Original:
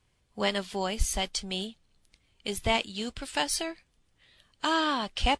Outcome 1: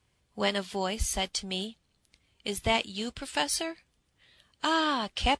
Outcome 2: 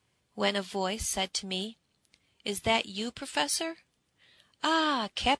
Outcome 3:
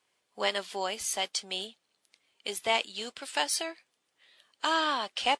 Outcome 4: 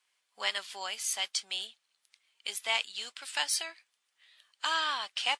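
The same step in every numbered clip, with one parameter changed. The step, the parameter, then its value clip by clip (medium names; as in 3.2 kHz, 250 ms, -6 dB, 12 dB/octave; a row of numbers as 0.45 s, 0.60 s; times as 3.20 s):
high-pass, cutoff frequency: 45 Hz, 110 Hz, 430 Hz, 1.2 kHz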